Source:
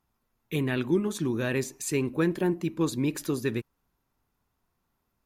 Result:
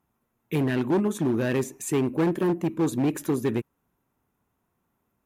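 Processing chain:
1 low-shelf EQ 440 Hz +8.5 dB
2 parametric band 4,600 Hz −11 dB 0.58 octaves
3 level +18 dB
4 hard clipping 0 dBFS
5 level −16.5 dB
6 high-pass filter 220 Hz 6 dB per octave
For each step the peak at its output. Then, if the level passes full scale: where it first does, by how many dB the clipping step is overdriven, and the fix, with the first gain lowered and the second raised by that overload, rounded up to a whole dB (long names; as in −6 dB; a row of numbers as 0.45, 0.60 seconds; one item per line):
−8.5, −8.5, +9.5, 0.0, −16.5, −13.0 dBFS
step 3, 9.5 dB
step 3 +8 dB, step 5 −6.5 dB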